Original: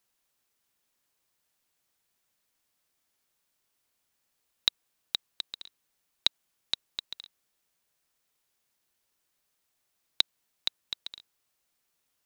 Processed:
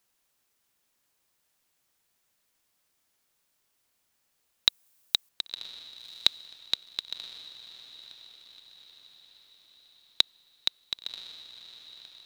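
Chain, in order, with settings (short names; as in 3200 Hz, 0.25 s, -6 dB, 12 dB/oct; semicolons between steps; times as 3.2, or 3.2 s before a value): 4.68–5.29 high shelf 6300 Hz +11 dB; diffused feedback echo 1.063 s, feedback 48%, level -14.5 dB; gain +3 dB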